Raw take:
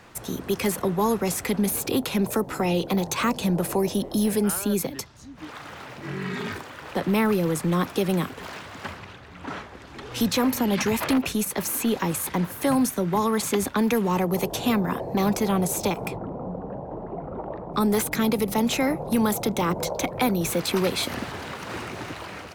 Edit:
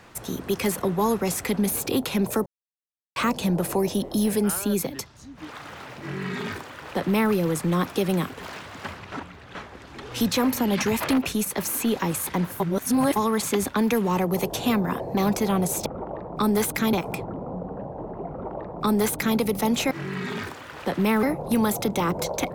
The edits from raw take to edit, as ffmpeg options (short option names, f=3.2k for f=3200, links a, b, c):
-filter_complex "[0:a]asplit=11[a][b][c][d][e][f][g][h][i][j][k];[a]atrim=end=2.46,asetpts=PTS-STARTPTS,afade=t=out:st=2.456:d=0.004:c=hsin[l];[b]atrim=start=2.46:end=3.16,asetpts=PTS-STARTPTS,volume=0[m];[c]atrim=start=3.16:end=9.122,asetpts=PTS-STARTPTS,afade=t=in:d=0.004:c=hsin[n];[d]atrim=start=9.118:end=9.552,asetpts=PTS-STARTPTS,areverse[o];[e]atrim=start=9.548:end=12.602[p];[f]atrim=start=12.598:end=13.162,asetpts=PTS-STARTPTS,areverse[q];[g]atrim=start=13.158:end=15.862[r];[h]atrim=start=17.228:end=18.302[s];[i]atrim=start=15.858:end=18.842[t];[j]atrim=start=5.998:end=7.322[u];[k]atrim=start=18.838[v];[l][m][n]concat=n=3:v=0:a=1[w];[w][o]acrossfade=d=0.004:c1=hsin:c2=hsin[x];[x][p]acrossfade=d=0.004:c1=hsin:c2=hsin[y];[y][q]acrossfade=d=0.004:c1=hsin:c2=hsin[z];[z][r]acrossfade=d=0.004:c1=hsin:c2=hsin[aa];[aa][s]acrossfade=d=0.004:c1=hsin:c2=hsin[ab];[ab][t]acrossfade=d=0.004:c1=hsin:c2=hsin[ac];[ac][u]acrossfade=d=0.004:c1=hsin:c2=hsin[ad];[ad][v]acrossfade=d=0.004:c1=hsin:c2=hsin"